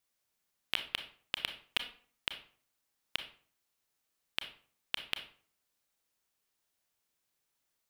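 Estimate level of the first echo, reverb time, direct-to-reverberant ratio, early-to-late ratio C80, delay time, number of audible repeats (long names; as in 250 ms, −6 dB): no echo audible, 0.50 s, 7.0 dB, 15.0 dB, no echo audible, no echo audible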